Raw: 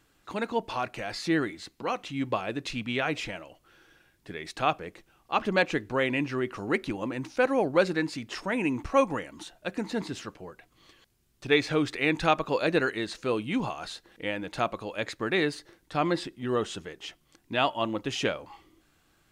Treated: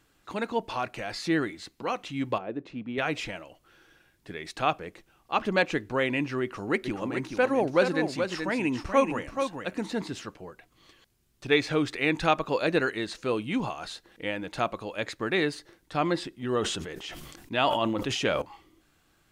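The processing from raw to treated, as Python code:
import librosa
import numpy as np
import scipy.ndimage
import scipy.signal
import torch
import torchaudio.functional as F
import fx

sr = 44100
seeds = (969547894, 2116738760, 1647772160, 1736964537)

y = fx.bandpass_q(x, sr, hz=360.0, q=0.7, at=(2.38, 2.98))
y = fx.echo_single(y, sr, ms=429, db=-6.5, at=(6.84, 10.0), fade=0.02)
y = fx.sustainer(y, sr, db_per_s=35.0, at=(16.61, 18.42))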